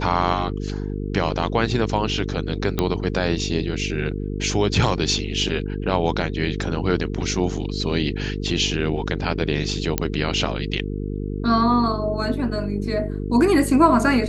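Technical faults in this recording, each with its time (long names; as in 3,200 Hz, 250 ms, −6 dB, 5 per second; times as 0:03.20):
mains buzz 50 Hz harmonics 9 −27 dBFS
0:02.79: click −7 dBFS
0:09.98: click −4 dBFS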